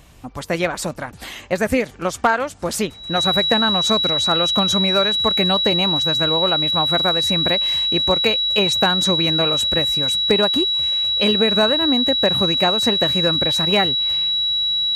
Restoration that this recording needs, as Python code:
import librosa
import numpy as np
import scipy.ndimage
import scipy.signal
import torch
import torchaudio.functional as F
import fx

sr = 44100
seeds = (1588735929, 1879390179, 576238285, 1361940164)

y = fx.fix_declip(x, sr, threshold_db=-6.5)
y = fx.notch(y, sr, hz=3900.0, q=30.0)